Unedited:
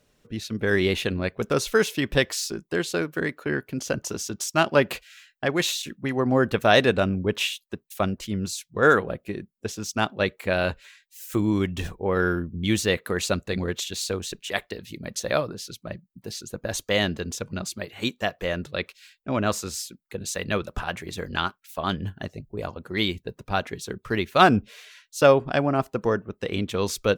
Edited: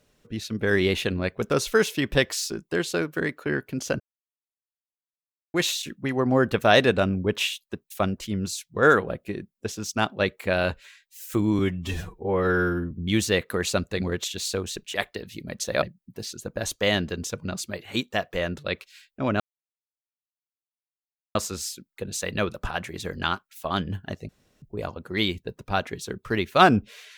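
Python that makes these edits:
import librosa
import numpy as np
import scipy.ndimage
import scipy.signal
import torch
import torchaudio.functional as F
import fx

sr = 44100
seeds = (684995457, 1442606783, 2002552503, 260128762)

y = fx.edit(x, sr, fx.silence(start_s=4.0, length_s=1.54),
    fx.stretch_span(start_s=11.59, length_s=0.88, factor=1.5),
    fx.cut(start_s=15.38, length_s=0.52),
    fx.insert_silence(at_s=19.48, length_s=1.95),
    fx.insert_room_tone(at_s=22.42, length_s=0.33), tone=tone)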